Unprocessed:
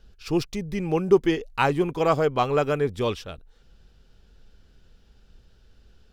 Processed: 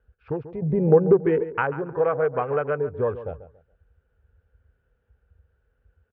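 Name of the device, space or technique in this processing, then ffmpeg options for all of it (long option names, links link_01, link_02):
bass amplifier: -filter_complex "[0:a]afwtdn=0.02,acompressor=threshold=-29dB:ratio=5,highpass=frequency=64:width=0.5412,highpass=frequency=64:width=1.3066,equalizer=frequency=200:width_type=q:width=4:gain=-8,equalizer=frequency=320:width_type=q:width=4:gain=-8,equalizer=frequency=490:width_type=q:width=4:gain=8,equalizer=frequency=1500:width_type=q:width=4:gain=7,lowpass=frequency=2200:width=0.5412,lowpass=frequency=2200:width=1.3066,asettb=1/sr,asplit=3[link_01][link_02][link_03];[link_01]atrim=end=0.624[link_04];[link_02]atrim=start=0.62:end=1.51,asetpts=PTS-STARTPTS,afade=type=in:duration=0.004:curve=qsin,afade=type=out:start_time=0.886:duration=0.004:curve=qsin,equalizer=frequency=240:width=0.34:gain=11[link_05];[link_03]atrim=start=1.506[link_06];[link_04][link_05]acrossfade=duration=0.004:curve1=hsin:curve2=qsin[link_07];[link_07][link_06]acrossfade=duration=0.004:curve1=qsin:curve2=hsin,asplit=2[link_08][link_09];[link_09]adelay=140,lowpass=frequency=1900:poles=1,volume=-13dB,asplit=2[link_10][link_11];[link_11]adelay=140,lowpass=frequency=1900:poles=1,volume=0.27,asplit=2[link_12][link_13];[link_13]adelay=140,lowpass=frequency=1900:poles=1,volume=0.27[link_14];[link_08][link_10][link_12][link_14]amix=inputs=4:normalize=0,volume=5dB"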